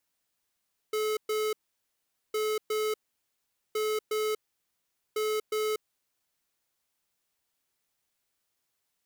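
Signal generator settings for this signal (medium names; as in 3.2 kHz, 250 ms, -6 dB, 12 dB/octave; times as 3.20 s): beep pattern square 430 Hz, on 0.24 s, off 0.12 s, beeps 2, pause 0.81 s, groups 4, -29 dBFS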